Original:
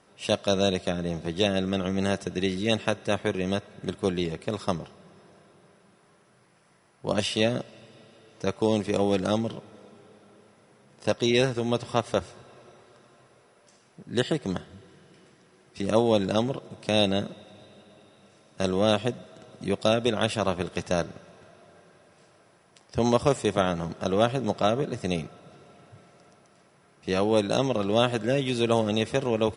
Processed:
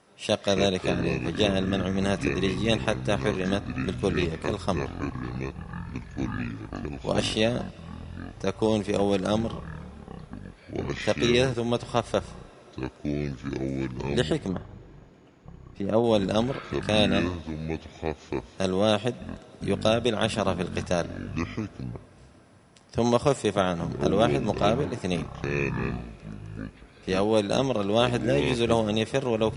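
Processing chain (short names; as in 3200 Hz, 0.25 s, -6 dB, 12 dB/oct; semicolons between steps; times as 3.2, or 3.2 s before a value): 14.48–16.04 LPF 1100 Hz 6 dB/oct; echoes that change speed 0.134 s, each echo -7 st, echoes 3, each echo -6 dB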